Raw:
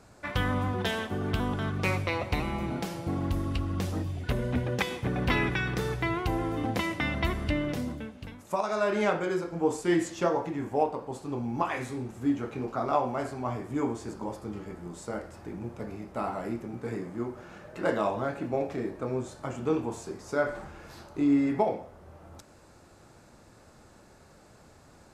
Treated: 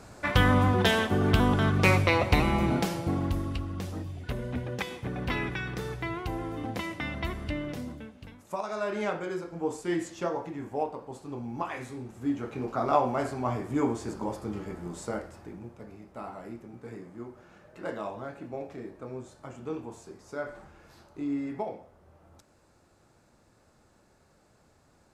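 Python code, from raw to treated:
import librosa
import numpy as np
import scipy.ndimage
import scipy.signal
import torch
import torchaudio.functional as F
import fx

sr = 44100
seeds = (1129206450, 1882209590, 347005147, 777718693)

y = fx.gain(x, sr, db=fx.line((2.74, 6.5), (3.75, -4.5), (12.04, -4.5), (12.93, 2.5), (15.07, 2.5), (15.78, -8.0)))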